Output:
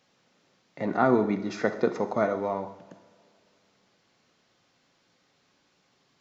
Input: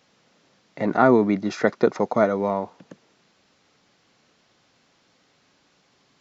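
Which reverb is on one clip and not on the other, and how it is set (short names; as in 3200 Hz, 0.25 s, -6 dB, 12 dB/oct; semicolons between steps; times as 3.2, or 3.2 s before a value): two-slope reverb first 0.78 s, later 3 s, from -21 dB, DRR 7 dB; gain -6 dB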